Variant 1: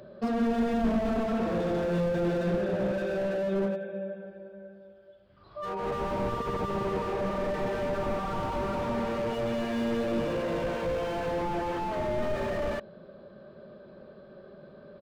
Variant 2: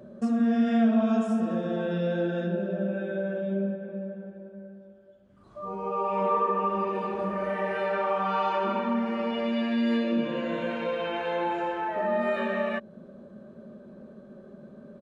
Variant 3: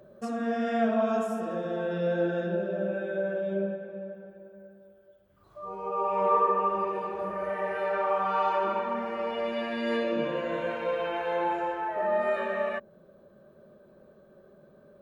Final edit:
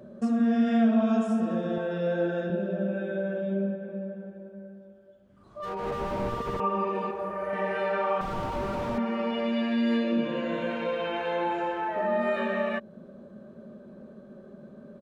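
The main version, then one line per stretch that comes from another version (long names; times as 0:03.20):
2
0:01.78–0:02.50: punch in from 3
0:05.60–0:06.60: punch in from 1
0:07.11–0:07.53: punch in from 3
0:08.21–0:08.98: punch in from 1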